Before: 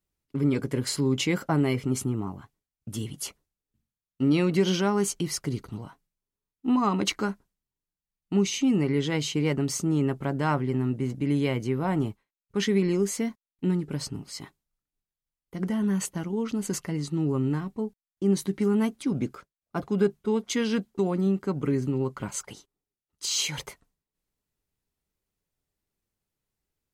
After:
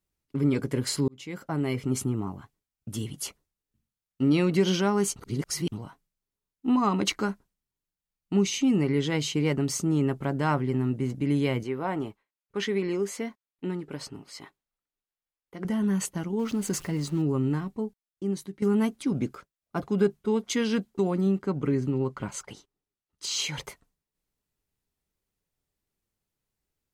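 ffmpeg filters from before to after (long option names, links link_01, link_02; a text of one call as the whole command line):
ffmpeg -i in.wav -filter_complex "[0:a]asettb=1/sr,asplit=3[link_01][link_02][link_03];[link_01]atrim=end=11.634[link_04];[link_02]atrim=start=11.63:end=15.65,asetpts=PTS-STARTPTS,afade=type=in:duration=0.004:curve=qsin,afade=type=out:start_time=4.016:duration=0.004:curve=qsin,bass=frequency=250:gain=-11,treble=frequency=4000:gain=-7[link_05];[link_03]atrim=start=15.646[link_06];[link_04][link_05]acrossfade=duration=0.004:curve1=hsin:curve2=qsin[link_07];[link_07][link_06]acrossfade=duration=0.004:curve1=qsin:curve2=hsin,asettb=1/sr,asplit=3[link_08][link_09][link_10];[link_08]atrim=end=16.394[link_11];[link_09]atrim=start=16.39:end=17.22,asetpts=PTS-STARTPTS,afade=type=in:duration=0.004:curve=qsin,afade=type=out:start_time=0.826:duration=0.004:curve=qsin,aeval=exprs='val(0)+0.5*0.0075*sgn(val(0))':channel_layout=same[link_12];[link_10]atrim=start=17.216[link_13];[link_11][link_12]acrossfade=duration=0.004:curve1=hsin:curve2=qsin[link_14];[link_14][link_13]acrossfade=duration=0.004:curve1=qsin:curve2=hsin,asettb=1/sr,asplit=3[link_15][link_16][link_17];[link_15]atrim=end=21.384[link_18];[link_16]atrim=start=21.38:end=23.64,asetpts=PTS-STARTPTS,afade=type=in:duration=0.004:curve=qsin,afade=type=out:start_time=2.256:duration=0.004:curve=qsin,highshelf=frequency=7700:gain=-9.5[link_19];[link_17]atrim=start=23.636[link_20];[link_18][link_19]acrossfade=duration=0.004:curve1=hsin:curve2=qsin[link_21];[link_21][link_20]acrossfade=duration=0.004:curve1=qsin:curve2=hsin,asplit=5[link_22][link_23][link_24][link_25][link_26];[link_22]atrim=end=1.08,asetpts=PTS-STARTPTS,afade=type=out:start_time=1.076:duration=0.004:curve=hsin[link_27];[link_23]atrim=start=1.08:end=5.162,asetpts=PTS-STARTPTS,afade=type=in:duration=0.89[link_28];[link_24]atrim=start=5.158:end=5.722,asetpts=PTS-STARTPTS,areverse[link_29];[link_25]atrim=start=5.718:end=18.62,asetpts=PTS-STARTPTS,afade=type=out:start_time=12.022:duration=0.88:silence=0.199526[link_30];[link_26]atrim=start=18.62,asetpts=PTS-STARTPTS,afade=type=in:duration=0.004:curve=hsin:silence=0.199526[link_31];[link_27][link_28]concat=n=2:v=0:a=1[link_32];[link_32][link_29]acrossfade=duration=0.004:curve1=hsin:curve2=hsin[link_33];[link_30][link_31]concat=n=2:v=0:a=1[link_34];[link_33][link_34]acrossfade=duration=0.004:curve1=hsin:curve2=hsin" out.wav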